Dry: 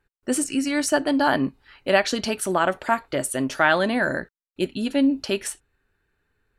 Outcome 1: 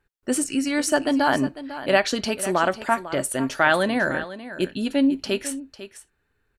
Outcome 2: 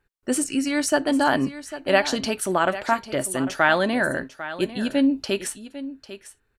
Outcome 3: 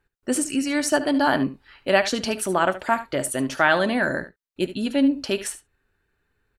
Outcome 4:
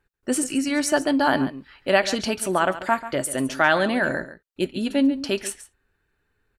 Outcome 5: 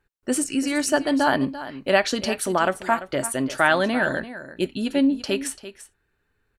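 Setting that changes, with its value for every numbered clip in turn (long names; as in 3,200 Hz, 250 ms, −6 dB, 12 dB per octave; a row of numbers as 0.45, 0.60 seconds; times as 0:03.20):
single-tap delay, delay time: 499, 798, 73, 139, 340 milliseconds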